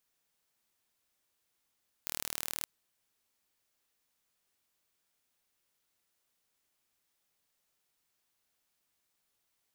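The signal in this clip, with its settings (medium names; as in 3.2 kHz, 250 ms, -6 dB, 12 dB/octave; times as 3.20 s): pulse train 38.7 per s, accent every 0, -8.5 dBFS 0.59 s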